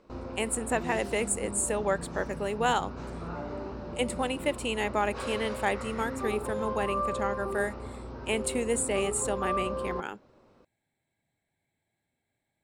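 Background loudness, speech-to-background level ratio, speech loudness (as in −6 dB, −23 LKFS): −36.5 LKFS, 5.5 dB, −31.0 LKFS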